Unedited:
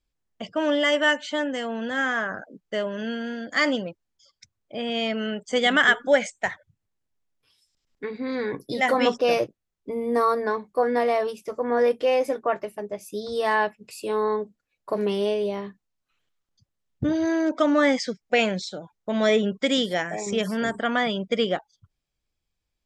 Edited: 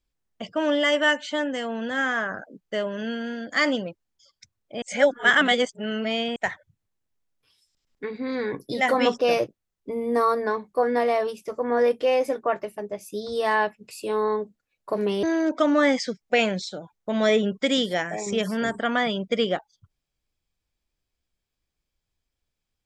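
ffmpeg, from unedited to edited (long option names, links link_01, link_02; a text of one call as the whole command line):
ffmpeg -i in.wav -filter_complex "[0:a]asplit=4[link_01][link_02][link_03][link_04];[link_01]atrim=end=4.822[link_05];[link_02]atrim=start=4.818:end=6.362,asetpts=PTS-STARTPTS,areverse[link_06];[link_03]atrim=start=6.358:end=15.232[link_07];[link_04]atrim=start=17.228[link_08];[link_05][link_06]acrossfade=duration=0.004:curve1=hsin:curve2=hsin[link_09];[link_09][link_07]acrossfade=duration=0.004:curve1=hsin:curve2=hsin[link_10];[link_10][link_08]acrossfade=duration=0.004:curve1=hsin:curve2=hsin" out.wav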